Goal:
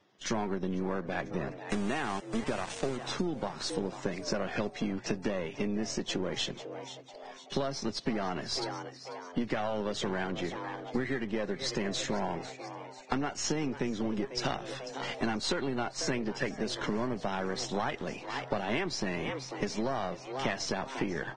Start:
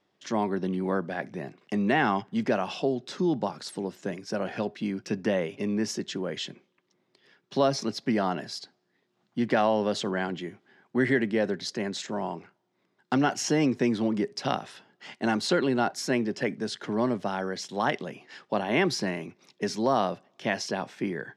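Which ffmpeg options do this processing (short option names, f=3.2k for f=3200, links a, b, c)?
-filter_complex "[0:a]aeval=exprs='if(lt(val(0),0),0.447*val(0),val(0))':c=same,lowpass=7k,asettb=1/sr,asplit=3[a][b][c];[a]atrim=end=1.624[d];[b]atrim=start=1.62:end=2.97,asetpts=PTS-STARTPTS,afade=t=in:d=0.004:c=qsin,afade=t=out:st=1.346:d=0.004:c=qsin,aeval=exprs='val(0)*gte(abs(val(0)),0.0224)':c=same[e];[c]atrim=start=2.966[f];[d][e]acrossfade=d=0.004:c1=hsin:c2=qsin[g];[g][f]acrossfade=d=0.004:c1=qsin:c2=hsin,asplit=5[h][i][j][k][l];[i]adelay=494,afreqshift=130,volume=-17.5dB[m];[j]adelay=988,afreqshift=260,volume=-23.9dB[n];[k]adelay=1482,afreqshift=390,volume=-30.3dB[o];[l]adelay=1976,afreqshift=520,volume=-36.6dB[p];[h][m][n][o][p]amix=inputs=5:normalize=0,acompressor=threshold=-35dB:ratio=12,volume=7dB" -ar 22050 -c:a libvorbis -b:a 16k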